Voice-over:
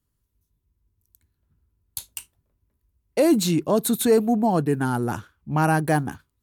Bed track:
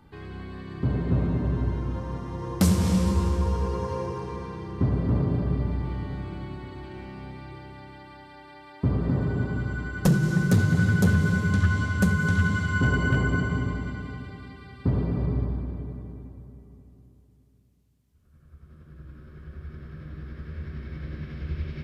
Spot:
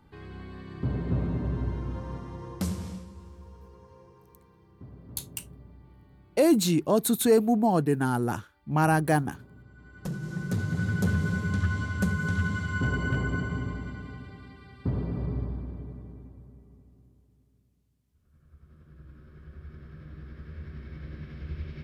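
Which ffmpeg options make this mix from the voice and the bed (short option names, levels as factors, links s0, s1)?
-filter_complex "[0:a]adelay=3200,volume=0.75[s0];[1:a]volume=5.01,afade=t=out:st=2.12:d=0.95:silence=0.112202,afade=t=in:st=9.73:d=1.42:silence=0.125893[s1];[s0][s1]amix=inputs=2:normalize=0"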